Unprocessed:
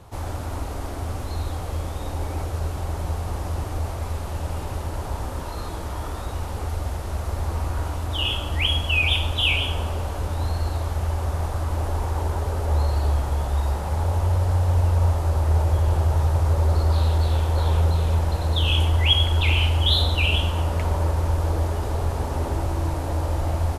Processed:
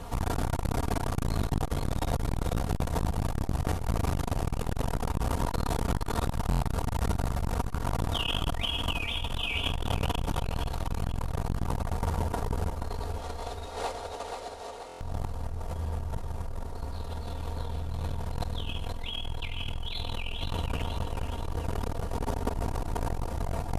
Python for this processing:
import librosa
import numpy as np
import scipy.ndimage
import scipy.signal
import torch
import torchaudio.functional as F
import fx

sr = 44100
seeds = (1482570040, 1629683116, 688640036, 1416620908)

y = fx.octave_divider(x, sr, octaves=2, level_db=-5.0)
y = y + 0.63 * np.pad(y, (int(4.3 * sr / 1000.0), 0))[:len(y)]
y = fx.over_compress(y, sr, threshold_db=-27.0, ratio=-1.0)
y = fx.cabinet(y, sr, low_hz=360.0, low_slope=24, high_hz=9900.0, hz=(1000.0, 1600.0, 4000.0, 8500.0), db=(-6, -4, 5, -3), at=(12.89, 14.97))
y = fx.echo_feedback(y, sr, ms=480, feedback_pct=46, wet_db=-6)
y = fx.buffer_glitch(y, sr, at_s=(6.47, 14.87), block=1024, repeats=5)
y = fx.transformer_sat(y, sr, knee_hz=250.0)